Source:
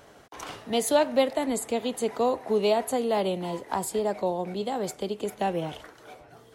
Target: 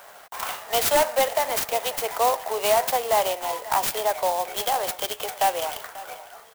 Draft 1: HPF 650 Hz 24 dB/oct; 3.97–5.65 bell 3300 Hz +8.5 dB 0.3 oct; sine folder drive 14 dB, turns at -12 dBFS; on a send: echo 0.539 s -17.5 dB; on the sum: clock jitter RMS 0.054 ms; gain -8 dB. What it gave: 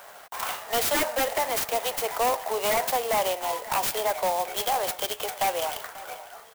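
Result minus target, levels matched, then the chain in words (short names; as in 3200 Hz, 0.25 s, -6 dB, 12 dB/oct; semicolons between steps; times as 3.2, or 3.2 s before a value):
sine folder: distortion +10 dB
HPF 650 Hz 24 dB/oct; 3.97–5.65 bell 3300 Hz +8.5 dB 0.3 oct; sine folder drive 14 dB, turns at -6 dBFS; on a send: echo 0.539 s -17.5 dB; on the sum: clock jitter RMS 0.054 ms; gain -8 dB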